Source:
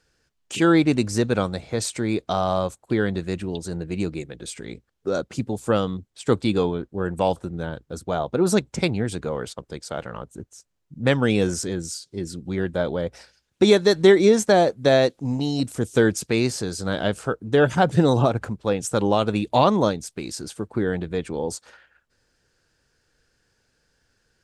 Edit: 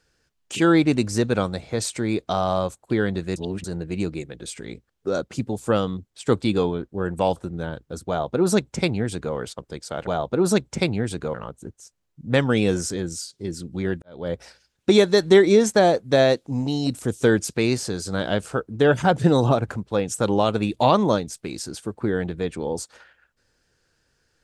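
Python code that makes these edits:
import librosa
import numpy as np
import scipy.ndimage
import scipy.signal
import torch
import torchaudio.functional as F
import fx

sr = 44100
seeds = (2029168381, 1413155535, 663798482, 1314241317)

y = fx.edit(x, sr, fx.reverse_span(start_s=3.36, length_s=0.28),
    fx.duplicate(start_s=8.08, length_s=1.27, to_s=10.07),
    fx.fade_in_span(start_s=12.75, length_s=0.28, curve='qua'), tone=tone)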